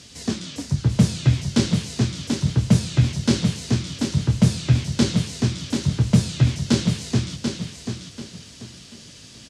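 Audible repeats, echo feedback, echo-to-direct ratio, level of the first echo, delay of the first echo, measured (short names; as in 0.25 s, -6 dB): 3, 30%, -5.5 dB, -6.0 dB, 0.738 s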